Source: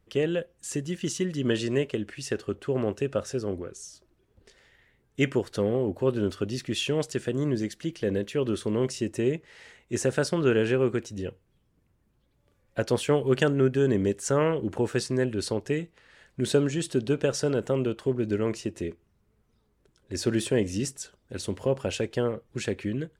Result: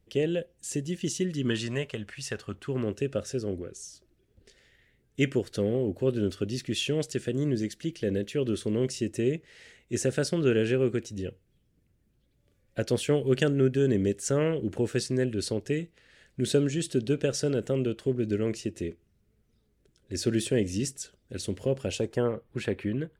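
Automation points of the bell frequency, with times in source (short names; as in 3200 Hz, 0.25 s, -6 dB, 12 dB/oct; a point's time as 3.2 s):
bell -11.5 dB 0.99 oct
1.2 s 1200 Hz
1.79 s 320 Hz
2.38 s 320 Hz
3.01 s 990 Hz
21.87 s 990 Hz
22.29 s 6500 Hz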